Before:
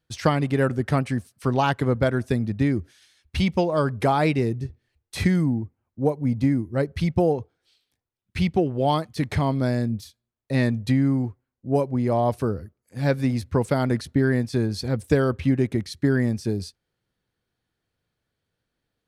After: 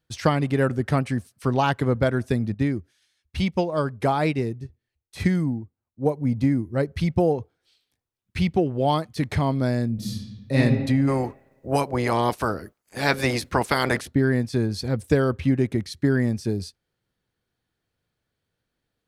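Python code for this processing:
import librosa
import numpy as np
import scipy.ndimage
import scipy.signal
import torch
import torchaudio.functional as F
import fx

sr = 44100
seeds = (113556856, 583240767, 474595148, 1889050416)

y = fx.upward_expand(x, sr, threshold_db=-36.0, expansion=1.5, at=(2.54, 6.06))
y = fx.reverb_throw(y, sr, start_s=9.94, length_s=0.62, rt60_s=1.3, drr_db=-8.0)
y = fx.spec_clip(y, sr, under_db=21, at=(11.07, 14.07), fade=0.02)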